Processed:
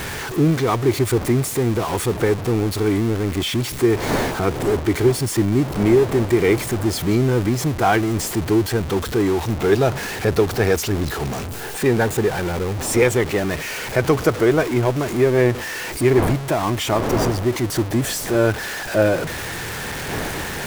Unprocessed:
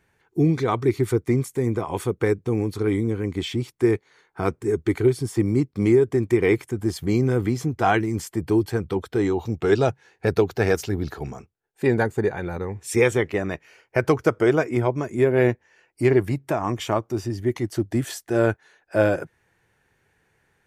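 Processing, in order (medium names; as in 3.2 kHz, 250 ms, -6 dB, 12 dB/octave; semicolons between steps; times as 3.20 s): jump at every zero crossing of -23.5 dBFS; wind noise 630 Hz -34 dBFS; trim +1 dB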